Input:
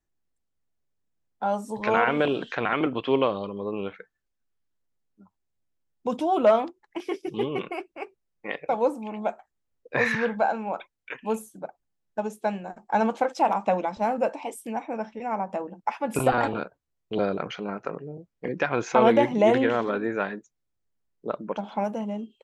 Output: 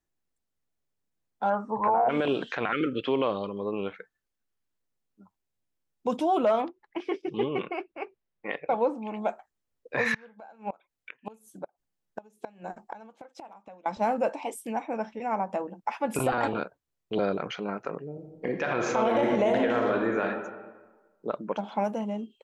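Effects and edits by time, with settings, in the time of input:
1.49–2.08 s: resonant low-pass 1.7 kHz -> 680 Hz, resonance Q 6.7
2.72–3.06 s: spectral selection erased 580–1200 Hz
6.62–9.08 s: low-pass 3.5 kHz
10.14–13.86 s: inverted gate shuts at -22 dBFS, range -25 dB
18.10–20.24 s: reverb throw, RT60 1.3 s, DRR 3 dB
whole clip: bass shelf 110 Hz -5 dB; peak limiter -16 dBFS

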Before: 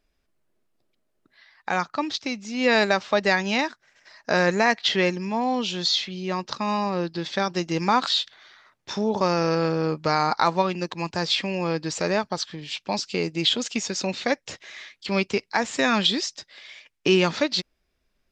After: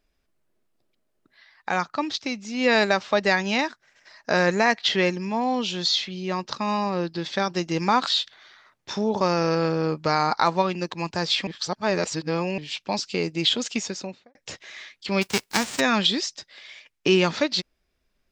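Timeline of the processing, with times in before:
11.47–12.58 s: reverse
13.76–14.35 s: studio fade out
15.21–15.79 s: formants flattened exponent 0.3

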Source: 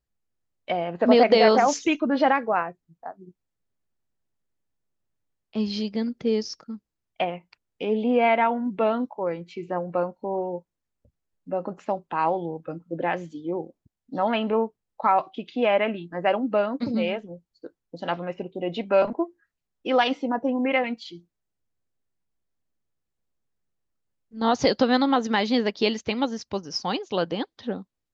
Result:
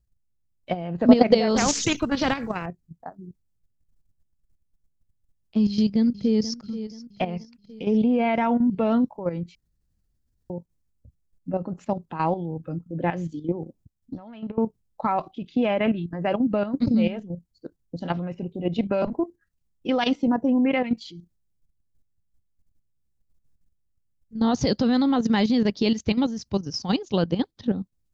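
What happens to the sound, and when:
1.56–2.66 s: spectrum-flattening compressor 2:1
5.66–6.57 s: echo throw 480 ms, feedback 50%, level -14 dB
9.55–10.50 s: room tone
13.63–14.58 s: compression 10:1, threshold -35 dBFS
whole clip: bass shelf 290 Hz +10.5 dB; level held to a coarse grid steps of 11 dB; tone controls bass +8 dB, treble +8 dB; trim -1 dB

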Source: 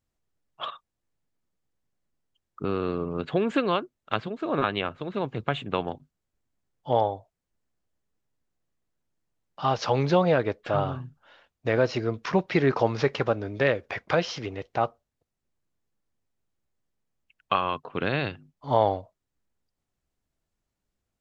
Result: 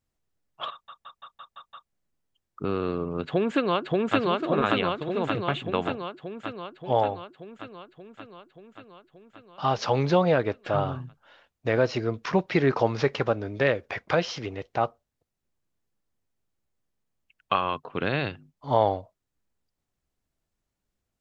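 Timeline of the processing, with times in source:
0.71 s: stutter in place 0.17 s, 7 plays
3.26–4.20 s: echo throw 580 ms, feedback 70%, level -0.5 dB

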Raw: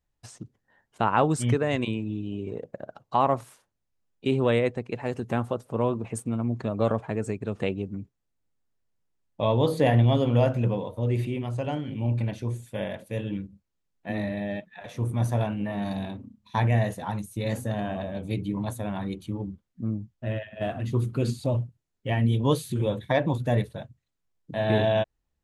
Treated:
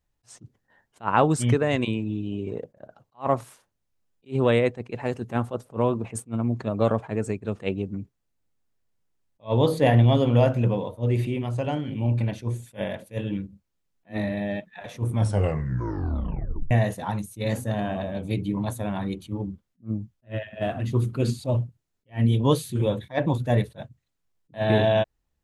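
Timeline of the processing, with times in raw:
15.13 s: tape stop 1.58 s
whole clip: attacks held to a fixed rise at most 330 dB/s; trim +2.5 dB

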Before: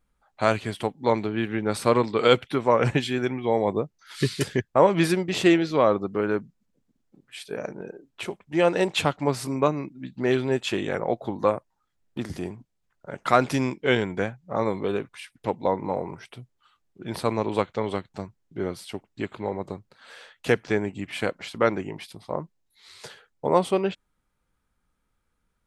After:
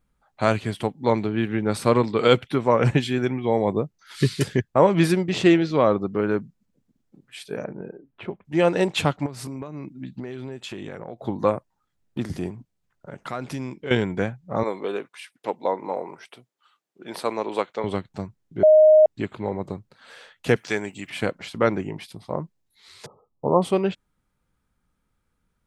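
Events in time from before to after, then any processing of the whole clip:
5.32–6.28 s: low-pass 7.5 kHz
7.64–8.45 s: distance through air 470 m
9.26–11.23 s: compression 12:1, threshold -32 dBFS
12.50–13.91 s: compression 2:1, threshold -37 dBFS
14.63–17.84 s: high-pass 390 Hz
18.63–19.06 s: bleep 620 Hz -10 dBFS
20.56–21.10 s: tilt EQ +3.5 dB/octave
23.06–23.62 s: brick-wall FIR low-pass 1.3 kHz
whole clip: peaking EQ 140 Hz +5 dB 2.2 oct

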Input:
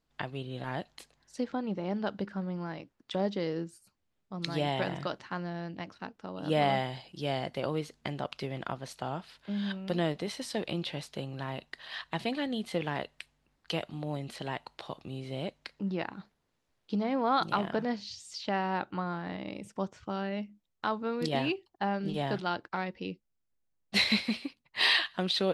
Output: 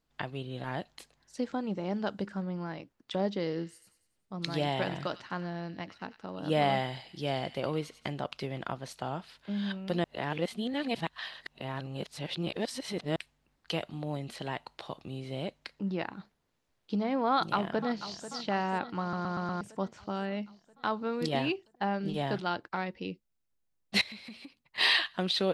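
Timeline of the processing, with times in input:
1.43–2.42 s: peaking EQ 7.9 kHz +10 dB 0.73 oct
3.37–8.12 s: feedback echo behind a high-pass 94 ms, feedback 49%, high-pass 1.9 kHz, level -10.5 dB
10.04–13.16 s: reverse
17.33–18.29 s: echo throw 490 ms, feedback 65%, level -13 dB
19.01 s: stutter in place 0.12 s, 5 plays
24.01–24.78 s: compression 5:1, threshold -44 dBFS

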